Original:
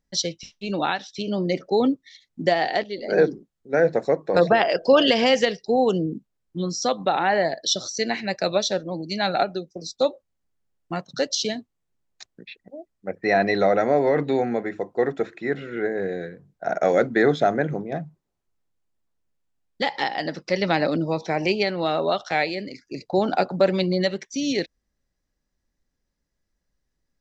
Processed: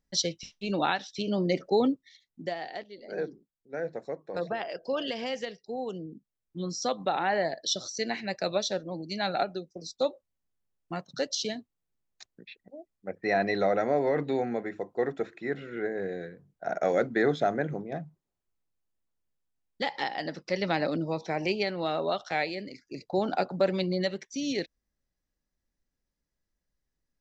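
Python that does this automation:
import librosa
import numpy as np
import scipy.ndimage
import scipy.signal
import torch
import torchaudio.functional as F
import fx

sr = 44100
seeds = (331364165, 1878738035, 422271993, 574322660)

y = fx.gain(x, sr, db=fx.line((1.72, -3.0), (2.6, -15.0), (6.11, -15.0), (6.7, -6.5)))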